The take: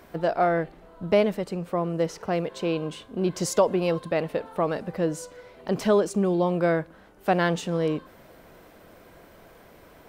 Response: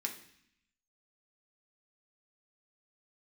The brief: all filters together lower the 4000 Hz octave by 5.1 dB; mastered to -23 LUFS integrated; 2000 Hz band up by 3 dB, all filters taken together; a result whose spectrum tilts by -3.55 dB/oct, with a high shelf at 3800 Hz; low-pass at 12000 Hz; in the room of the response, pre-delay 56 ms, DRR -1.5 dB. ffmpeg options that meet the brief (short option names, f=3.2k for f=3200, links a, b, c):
-filter_complex "[0:a]lowpass=12k,equalizer=f=2k:t=o:g=6.5,highshelf=f=3.8k:g=-3.5,equalizer=f=4k:t=o:g=-8.5,asplit=2[a][b];[1:a]atrim=start_sample=2205,adelay=56[c];[b][c]afir=irnorm=-1:irlink=0,volume=0.5dB[d];[a][d]amix=inputs=2:normalize=0"